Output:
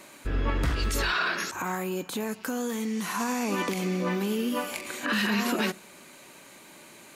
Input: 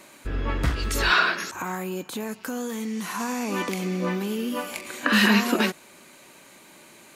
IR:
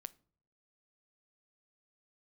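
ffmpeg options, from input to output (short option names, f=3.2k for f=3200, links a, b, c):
-filter_complex "[0:a]alimiter=limit=-18dB:level=0:latency=1:release=44,asplit=2[a][b];[1:a]atrim=start_sample=2205[c];[b][c]afir=irnorm=-1:irlink=0,volume=3.5dB[d];[a][d]amix=inputs=2:normalize=0,volume=-5dB"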